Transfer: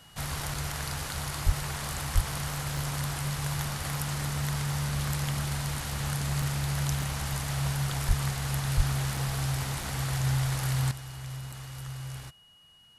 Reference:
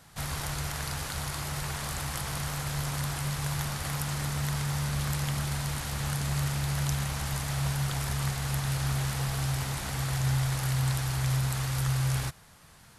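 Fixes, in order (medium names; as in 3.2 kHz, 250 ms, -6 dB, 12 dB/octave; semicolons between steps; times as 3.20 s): band-stop 2.9 kHz, Q 30; de-plosive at 1.45/2.14/8.07/8.76 s; interpolate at 0.54/2.77/6.42/7.02/9.17/9.83/11.52 s, 3.4 ms; gain correction +11 dB, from 10.91 s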